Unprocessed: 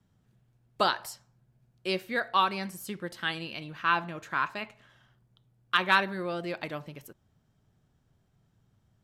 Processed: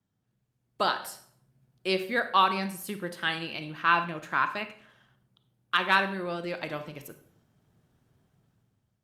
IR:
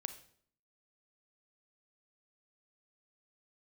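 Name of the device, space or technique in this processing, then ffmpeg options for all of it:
far-field microphone of a smart speaker: -filter_complex "[1:a]atrim=start_sample=2205[a];[0:a][a]afir=irnorm=-1:irlink=0,highpass=f=110:p=1,dynaudnorm=f=230:g=7:m=14.5dB,volume=-7dB" -ar 48000 -c:a libopus -b:a 48k

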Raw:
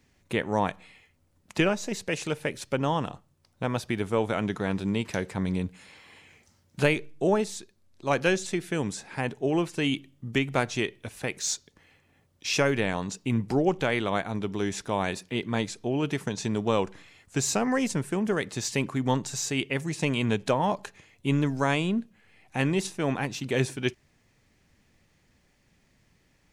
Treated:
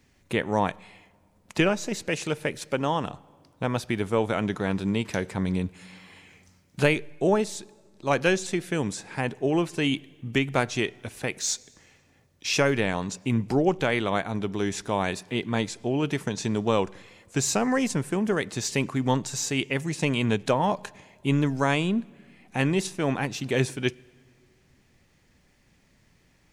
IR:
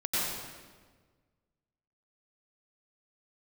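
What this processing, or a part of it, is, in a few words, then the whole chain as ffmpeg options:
ducked reverb: -filter_complex "[0:a]asettb=1/sr,asplit=3[a][b][c];[a]atrim=end=2.604[d];[b]atrim=start=2.6:end=3.04,asetpts=PTS-STARTPTS,afade=t=in:d=0.004:c=qsin,afade=t=out:st=0.436:d=0.004:c=qsin,lowshelf=f=120:g=-9.5[e];[c]atrim=start=3.036[f];[d][e]acrossfade=d=0.004:c1=hsin:c2=qsin[g];[g][f]acrossfade=d=0.004:c1=qsin:c2=hsin,asplit=3[h][i][j];[1:a]atrim=start_sample=2205[k];[i][k]afir=irnorm=-1:irlink=0[l];[j]apad=whole_len=1169903[m];[l][m]sidechaincompress=threshold=-42dB:ratio=5:attack=16:release=1170,volume=-18dB[n];[h][n]amix=inputs=2:normalize=0,volume=1.5dB"

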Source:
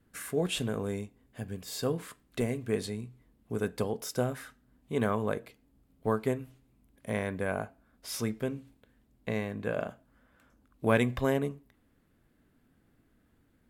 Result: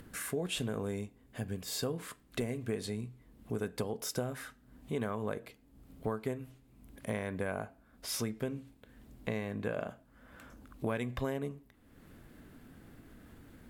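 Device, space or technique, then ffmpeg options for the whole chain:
upward and downward compression: -af "acompressor=mode=upward:threshold=-44dB:ratio=2.5,acompressor=threshold=-33dB:ratio=6,volume=1.5dB"

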